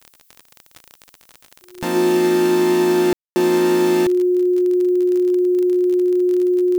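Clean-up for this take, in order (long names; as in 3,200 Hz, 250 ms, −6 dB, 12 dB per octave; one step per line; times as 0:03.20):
click removal
notch filter 360 Hz, Q 30
ambience match 0:03.13–0:03.36
downward expander −48 dBFS, range −21 dB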